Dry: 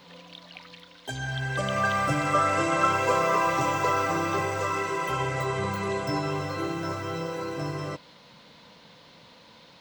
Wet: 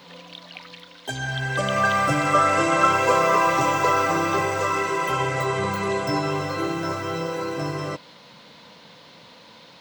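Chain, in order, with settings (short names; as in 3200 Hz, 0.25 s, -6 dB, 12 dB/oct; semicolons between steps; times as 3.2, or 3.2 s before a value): HPF 120 Hz 6 dB/oct; gain +5 dB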